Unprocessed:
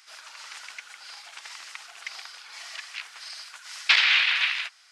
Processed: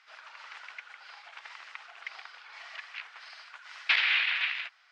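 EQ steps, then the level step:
dynamic equaliser 1,100 Hz, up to −5 dB, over −38 dBFS, Q 0.97
band-pass filter 400–2,500 Hz
−1.0 dB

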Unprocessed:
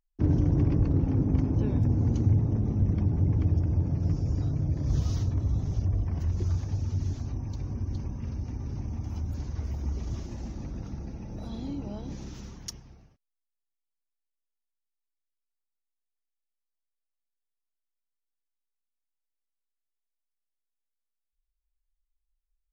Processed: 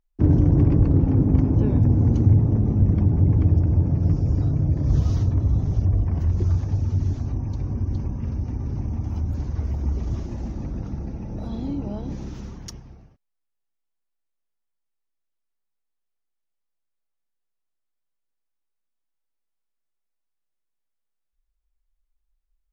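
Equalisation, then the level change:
high-shelf EQ 2,300 Hz −9.5 dB
+7.0 dB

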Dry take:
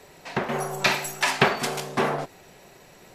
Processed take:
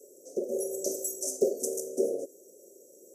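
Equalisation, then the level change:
high-pass filter 340 Hz 24 dB per octave
Chebyshev band-stop filter 550–6,000 Hz, order 5
linear-phase brick-wall band-stop 820–1,800 Hz
+2.0 dB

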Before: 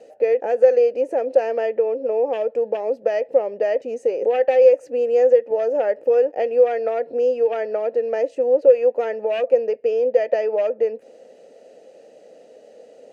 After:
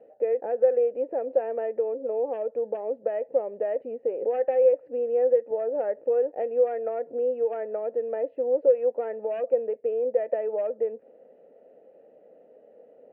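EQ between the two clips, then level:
Bessel low-pass filter 1,600 Hz, order 2
high-frequency loss of the air 430 metres
−5.5 dB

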